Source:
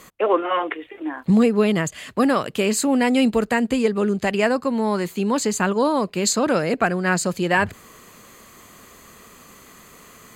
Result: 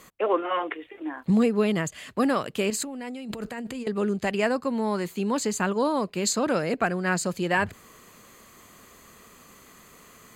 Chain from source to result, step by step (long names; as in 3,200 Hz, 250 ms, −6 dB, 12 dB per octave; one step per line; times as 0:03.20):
0:02.70–0:03.87: compressor whose output falls as the input rises −29 dBFS, ratio −1
level −5 dB